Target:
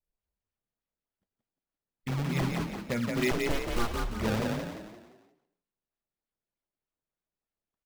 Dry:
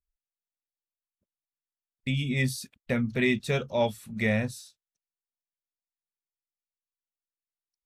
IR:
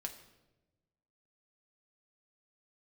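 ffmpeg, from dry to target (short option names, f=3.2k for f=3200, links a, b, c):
-filter_complex "[0:a]acrusher=samples=25:mix=1:aa=0.000001:lfo=1:lforange=40:lforate=3.3,asplit=2[a][b];[1:a]atrim=start_sample=2205,afade=t=out:st=0.33:d=0.01,atrim=end_sample=14994,lowpass=7k[c];[b][c]afir=irnorm=-1:irlink=0,volume=0dB[d];[a][d]amix=inputs=2:normalize=0,asettb=1/sr,asplit=3[e][f][g];[e]atrim=end=3.314[h];[f]atrim=start=3.31:end=4.1,asetpts=PTS-STARTPTS,afade=t=in:d=0.004:c=qsin,afade=t=out:st=0.786:d=0.004:c=qsin,aeval=exprs='abs(val(0))':c=same[i];[g]atrim=start=4.096[j];[h][i]acrossfade=d=0.004:c1=hsin:c2=qsin[k];[k][j]acrossfade=d=0.004:c1=qsin:c2=hsin,asplit=6[l][m][n][o][p][q];[m]adelay=174,afreqshift=34,volume=-3dB[r];[n]adelay=348,afreqshift=68,volume=-11dB[s];[o]adelay=522,afreqshift=102,volume=-18.9dB[t];[p]adelay=696,afreqshift=136,volume=-26.9dB[u];[q]adelay=870,afreqshift=170,volume=-34.8dB[v];[l][r][s][t][u][v]amix=inputs=6:normalize=0,volume=-8dB"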